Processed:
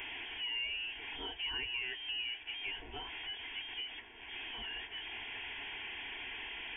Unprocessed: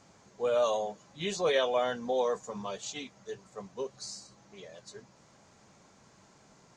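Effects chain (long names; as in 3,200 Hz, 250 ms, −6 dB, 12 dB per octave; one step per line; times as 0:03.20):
converter with a step at zero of −33 dBFS
downward compressor 2.5 to 1, threshold −37 dBFS, peak gain reduction 10.5 dB
voice inversion scrambler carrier 3,400 Hz
phaser with its sweep stopped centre 830 Hz, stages 8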